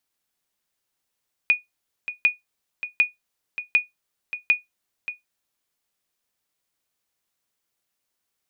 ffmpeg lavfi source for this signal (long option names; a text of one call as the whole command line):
ffmpeg -f lavfi -i "aevalsrc='0.355*(sin(2*PI*2460*mod(t,0.75))*exp(-6.91*mod(t,0.75)/0.16)+0.237*sin(2*PI*2460*max(mod(t,0.75)-0.58,0))*exp(-6.91*max(mod(t,0.75)-0.58,0)/0.16))':duration=3.75:sample_rate=44100" out.wav